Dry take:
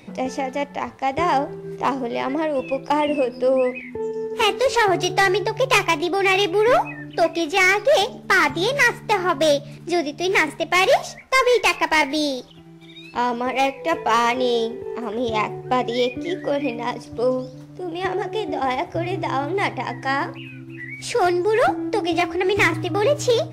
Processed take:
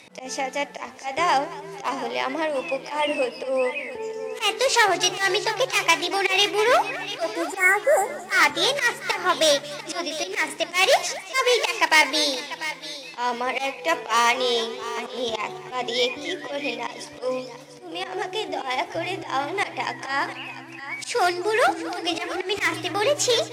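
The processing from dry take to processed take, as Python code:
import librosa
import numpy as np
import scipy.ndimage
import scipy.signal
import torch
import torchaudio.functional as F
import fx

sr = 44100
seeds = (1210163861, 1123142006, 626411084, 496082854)

y = scipy.signal.sosfilt(scipy.signal.butter(2, 11000.0, 'lowpass', fs=sr, output='sos'), x)
y = fx.low_shelf(y, sr, hz=260.0, db=-5.5)
y = fx.hum_notches(y, sr, base_hz=50, count=9)
y = np.clip(y, -10.0 ** (-10.5 / 20.0), 10.0 ** (-10.5 / 20.0))
y = fx.tilt_eq(y, sr, slope=2.5)
y = fx.auto_swell(y, sr, attack_ms=127.0)
y = fx.spec_repair(y, sr, seeds[0], start_s=7.26, length_s=0.94, low_hz=2200.0, high_hz=7000.0, source='both')
y = fx.echo_thinned(y, sr, ms=694, feedback_pct=18, hz=420.0, wet_db=-13.0)
y = fx.echo_warbled(y, sr, ms=223, feedback_pct=53, rate_hz=2.8, cents=145, wet_db=-18)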